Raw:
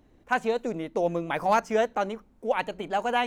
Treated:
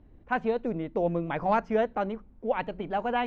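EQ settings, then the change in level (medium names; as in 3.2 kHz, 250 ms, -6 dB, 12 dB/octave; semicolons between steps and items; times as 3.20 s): distance through air 280 m; bass shelf 180 Hz +10.5 dB; -2.0 dB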